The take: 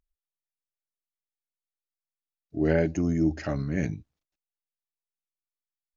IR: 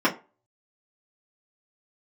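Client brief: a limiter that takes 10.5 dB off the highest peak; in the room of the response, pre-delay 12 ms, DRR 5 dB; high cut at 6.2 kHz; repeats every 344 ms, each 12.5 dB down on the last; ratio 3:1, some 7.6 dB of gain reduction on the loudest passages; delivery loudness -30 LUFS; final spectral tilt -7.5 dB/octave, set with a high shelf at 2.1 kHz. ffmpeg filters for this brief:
-filter_complex "[0:a]lowpass=6200,highshelf=f=2100:g=-5.5,acompressor=threshold=0.0355:ratio=3,alimiter=level_in=1.78:limit=0.0631:level=0:latency=1,volume=0.562,aecho=1:1:344|688|1032:0.237|0.0569|0.0137,asplit=2[s0][s1];[1:a]atrim=start_sample=2205,adelay=12[s2];[s1][s2]afir=irnorm=-1:irlink=0,volume=0.0841[s3];[s0][s3]amix=inputs=2:normalize=0,volume=2.11"

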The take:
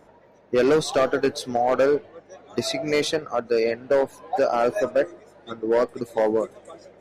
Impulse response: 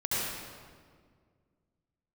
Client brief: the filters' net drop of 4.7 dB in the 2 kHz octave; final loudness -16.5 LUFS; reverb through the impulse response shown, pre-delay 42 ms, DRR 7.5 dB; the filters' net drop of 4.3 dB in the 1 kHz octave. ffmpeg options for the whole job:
-filter_complex "[0:a]equalizer=f=1000:t=o:g=-6,equalizer=f=2000:t=o:g=-4,asplit=2[s0][s1];[1:a]atrim=start_sample=2205,adelay=42[s2];[s1][s2]afir=irnorm=-1:irlink=0,volume=0.15[s3];[s0][s3]amix=inputs=2:normalize=0,volume=2.51"

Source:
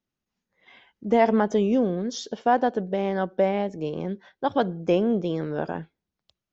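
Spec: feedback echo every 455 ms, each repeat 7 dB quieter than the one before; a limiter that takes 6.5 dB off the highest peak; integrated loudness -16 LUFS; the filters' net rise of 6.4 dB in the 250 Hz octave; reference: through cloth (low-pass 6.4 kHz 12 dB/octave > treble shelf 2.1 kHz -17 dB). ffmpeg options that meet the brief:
-af "equalizer=f=250:t=o:g=8,alimiter=limit=0.266:level=0:latency=1,lowpass=6400,highshelf=f=2100:g=-17,aecho=1:1:455|910|1365|1820|2275:0.447|0.201|0.0905|0.0407|0.0183,volume=2.24"

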